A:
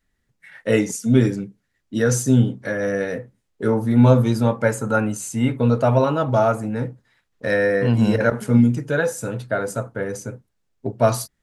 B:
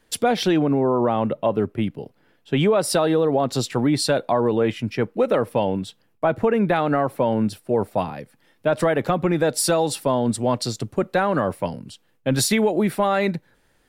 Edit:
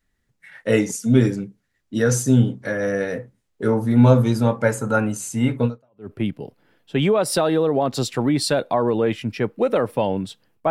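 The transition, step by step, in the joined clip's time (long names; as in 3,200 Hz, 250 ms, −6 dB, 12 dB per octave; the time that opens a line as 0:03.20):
A
0:05.88: continue with B from 0:01.46, crossfade 0.46 s exponential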